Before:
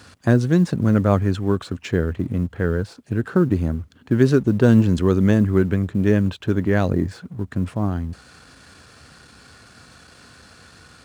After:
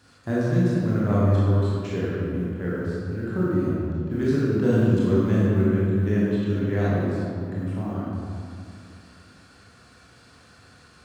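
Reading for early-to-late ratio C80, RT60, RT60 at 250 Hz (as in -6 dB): -2.0 dB, 2.4 s, 2.6 s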